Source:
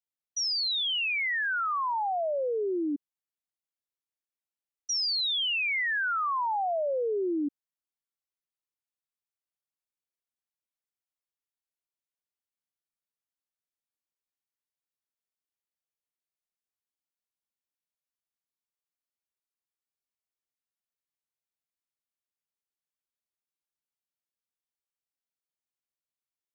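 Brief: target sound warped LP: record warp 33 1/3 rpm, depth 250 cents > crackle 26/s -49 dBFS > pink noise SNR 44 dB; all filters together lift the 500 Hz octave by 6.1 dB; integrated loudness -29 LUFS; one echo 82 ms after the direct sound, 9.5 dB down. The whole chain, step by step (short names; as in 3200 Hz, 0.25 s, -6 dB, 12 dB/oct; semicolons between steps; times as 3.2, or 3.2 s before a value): bell 500 Hz +7.5 dB; echo 82 ms -9.5 dB; record warp 33 1/3 rpm, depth 250 cents; crackle 26/s -49 dBFS; pink noise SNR 44 dB; gain -3.5 dB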